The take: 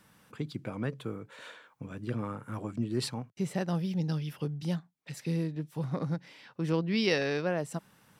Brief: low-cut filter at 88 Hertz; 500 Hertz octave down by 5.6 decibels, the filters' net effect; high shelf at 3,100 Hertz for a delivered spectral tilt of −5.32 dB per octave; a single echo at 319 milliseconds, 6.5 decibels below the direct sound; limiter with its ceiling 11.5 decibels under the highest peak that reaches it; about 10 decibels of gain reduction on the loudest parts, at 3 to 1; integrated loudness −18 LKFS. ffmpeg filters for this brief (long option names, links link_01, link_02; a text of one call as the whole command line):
ffmpeg -i in.wav -af "highpass=88,equalizer=frequency=500:width_type=o:gain=-7,highshelf=frequency=3100:gain=3,acompressor=threshold=-39dB:ratio=3,alimiter=level_in=12.5dB:limit=-24dB:level=0:latency=1,volume=-12.5dB,aecho=1:1:319:0.473,volume=27dB" out.wav